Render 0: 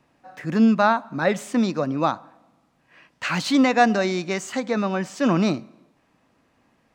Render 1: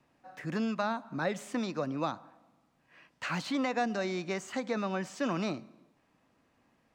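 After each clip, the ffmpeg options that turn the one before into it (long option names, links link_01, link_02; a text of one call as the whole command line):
ffmpeg -i in.wav -filter_complex "[0:a]acrossover=split=490|1600|3200[link_01][link_02][link_03][link_04];[link_01]acompressor=threshold=-27dB:ratio=4[link_05];[link_02]acompressor=threshold=-27dB:ratio=4[link_06];[link_03]acompressor=threshold=-37dB:ratio=4[link_07];[link_04]acompressor=threshold=-40dB:ratio=4[link_08];[link_05][link_06][link_07][link_08]amix=inputs=4:normalize=0,volume=-6.5dB" out.wav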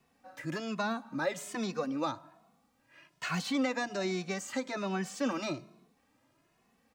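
ffmpeg -i in.wav -filter_complex "[0:a]highshelf=frequency=5800:gain=9,asplit=2[link_01][link_02];[link_02]adelay=2.3,afreqshift=1.2[link_03];[link_01][link_03]amix=inputs=2:normalize=1,volume=2dB" out.wav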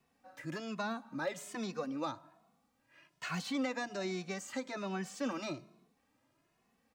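ffmpeg -i in.wav -af "volume=22.5dB,asoftclip=hard,volume=-22.5dB,volume=-4.5dB" out.wav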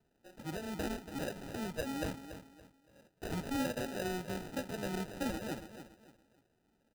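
ffmpeg -i in.wav -af "acrusher=samples=40:mix=1:aa=0.000001,aecho=1:1:283|566|849:0.282|0.0846|0.0254" out.wav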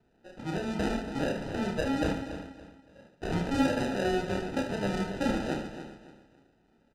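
ffmpeg -i in.wav -af "adynamicsmooth=sensitivity=2:basefreq=5000,aecho=1:1:30|75|142.5|243.8|395.6:0.631|0.398|0.251|0.158|0.1,volume=6.5dB" out.wav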